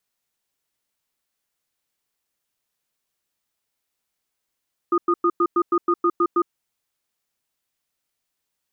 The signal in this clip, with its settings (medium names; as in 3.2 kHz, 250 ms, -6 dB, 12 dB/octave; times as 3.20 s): cadence 346 Hz, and 1.23 kHz, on 0.06 s, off 0.10 s, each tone -18 dBFS 1.57 s